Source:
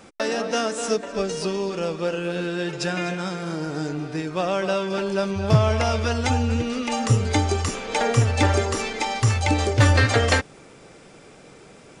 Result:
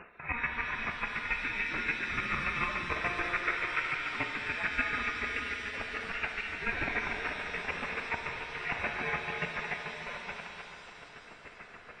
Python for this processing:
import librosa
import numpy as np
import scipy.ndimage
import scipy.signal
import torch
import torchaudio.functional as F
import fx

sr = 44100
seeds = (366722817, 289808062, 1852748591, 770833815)

y = fx.dereverb_blind(x, sr, rt60_s=0.71)
y = fx.over_compress(y, sr, threshold_db=-28.0, ratio=-0.5)
y = fx.peak_eq(y, sr, hz=980.0, db=12.5, octaves=0.26)
y = fx.echo_heads(y, sr, ms=72, heads='first and third', feedback_pct=62, wet_db=-10)
y = fx.chopper(y, sr, hz=6.9, depth_pct=60, duty_pct=20)
y = scipy.signal.sosfilt(scipy.signal.butter(2, 150.0, 'highpass', fs=sr, output='sos'), y)
y = fx.spec_gate(y, sr, threshold_db=-10, keep='weak')
y = fx.freq_invert(y, sr, carrier_hz=2800)
y = fx.rev_shimmer(y, sr, seeds[0], rt60_s=3.5, semitones=7, shimmer_db=-8, drr_db=4.5)
y = y * librosa.db_to_amplitude(3.5)